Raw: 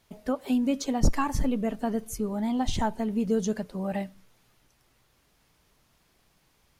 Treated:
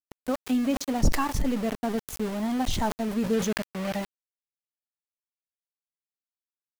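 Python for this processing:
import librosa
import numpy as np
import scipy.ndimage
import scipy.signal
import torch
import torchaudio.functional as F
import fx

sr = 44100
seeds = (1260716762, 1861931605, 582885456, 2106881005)

y = np.where(np.abs(x) >= 10.0 ** (-33.0 / 20.0), x, 0.0)
y = fx.peak_eq(y, sr, hz=2200.0, db=5.5, octaves=1.8, at=(3.33, 3.94))
y = fx.sustainer(y, sr, db_per_s=96.0)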